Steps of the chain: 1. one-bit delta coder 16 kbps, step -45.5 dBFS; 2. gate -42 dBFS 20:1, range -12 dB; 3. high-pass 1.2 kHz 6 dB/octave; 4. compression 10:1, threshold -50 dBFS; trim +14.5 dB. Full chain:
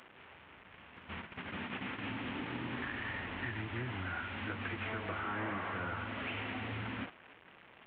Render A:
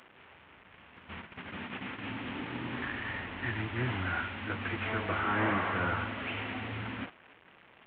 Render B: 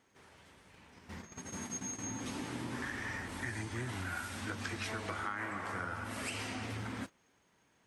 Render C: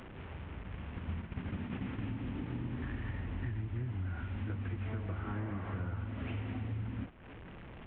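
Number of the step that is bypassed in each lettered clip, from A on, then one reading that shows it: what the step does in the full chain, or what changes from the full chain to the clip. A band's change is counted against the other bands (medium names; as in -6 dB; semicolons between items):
4, mean gain reduction 2.5 dB; 1, crest factor change +3.5 dB; 3, 125 Hz band +15.5 dB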